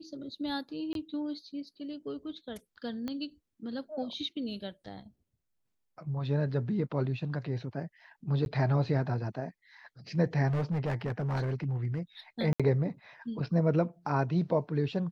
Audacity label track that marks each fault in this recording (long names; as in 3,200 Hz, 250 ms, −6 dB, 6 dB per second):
0.930000	0.950000	drop-out 22 ms
3.080000	3.080000	click −23 dBFS
8.450000	8.460000	drop-out 11 ms
10.470000	12.000000	clipping −26.5 dBFS
12.530000	12.600000	drop-out 66 ms